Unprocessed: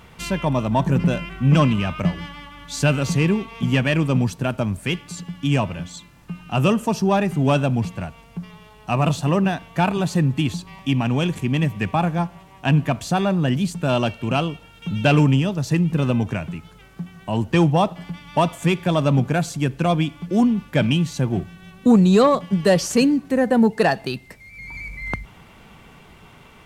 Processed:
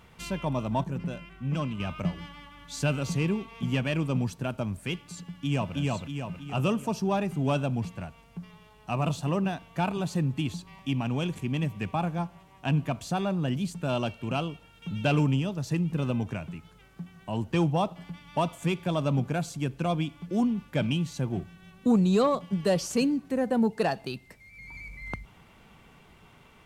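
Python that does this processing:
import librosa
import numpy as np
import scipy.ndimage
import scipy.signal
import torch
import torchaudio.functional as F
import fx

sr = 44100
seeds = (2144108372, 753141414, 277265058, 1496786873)

y = fx.echo_throw(x, sr, start_s=5.27, length_s=0.48, ms=320, feedback_pct=50, wet_db=-1.0)
y = fx.edit(y, sr, fx.clip_gain(start_s=0.84, length_s=0.96, db=-6.0), tone=tone)
y = fx.dynamic_eq(y, sr, hz=1800.0, q=4.4, threshold_db=-44.0, ratio=4.0, max_db=-5)
y = y * 10.0 ** (-8.5 / 20.0)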